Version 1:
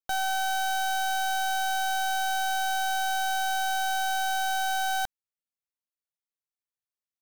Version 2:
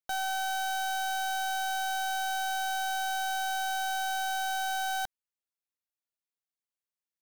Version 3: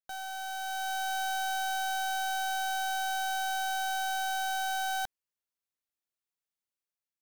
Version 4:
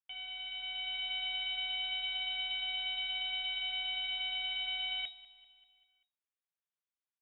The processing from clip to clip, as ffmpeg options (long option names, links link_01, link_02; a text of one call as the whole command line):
ffmpeg -i in.wav -af "lowshelf=frequency=180:gain=-4.5,volume=-3.5dB" out.wav
ffmpeg -i in.wav -af "dynaudnorm=framelen=300:gausssize=5:maxgain=7dB,volume=-7.5dB" out.wav
ffmpeg -i in.wav -af "lowpass=frequency=3200:width_type=q:width=0.5098,lowpass=frequency=3200:width_type=q:width=0.6013,lowpass=frequency=3200:width_type=q:width=0.9,lowpass=frequency=3200:width_type=q:width=2.563,afreqshift=-3800,flanger=delay=6:depth=5:regen=-68:speed=0.28:shape=triangular,aecho=1:1:195|390|585|780|975:0.106|0.0593|0.0332|0.0186|0.0104" out.wav